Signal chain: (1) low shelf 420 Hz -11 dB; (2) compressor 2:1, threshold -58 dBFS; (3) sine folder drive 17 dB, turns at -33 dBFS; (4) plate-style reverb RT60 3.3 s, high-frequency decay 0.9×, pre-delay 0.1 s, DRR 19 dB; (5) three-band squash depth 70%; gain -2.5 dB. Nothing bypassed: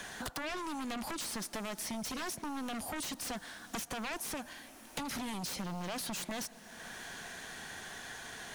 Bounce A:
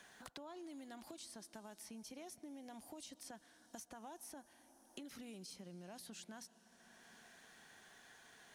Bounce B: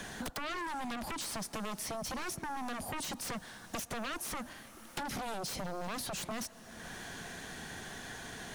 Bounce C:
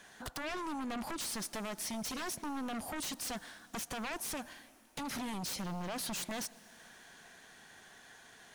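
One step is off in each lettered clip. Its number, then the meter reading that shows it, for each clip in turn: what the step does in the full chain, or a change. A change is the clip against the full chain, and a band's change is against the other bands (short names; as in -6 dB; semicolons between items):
3, crest factor change +2.5 dB; 1, 250 Hz band -2.5 dB; 5, crest factor change -8.0 dB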